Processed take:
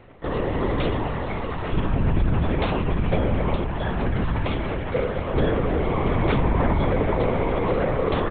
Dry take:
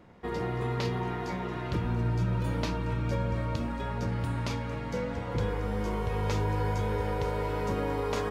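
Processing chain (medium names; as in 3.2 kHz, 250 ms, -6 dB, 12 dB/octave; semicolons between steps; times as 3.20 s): comb 1.8 ms; LPC vocoder at 8 kHz whisper; trim +6 dB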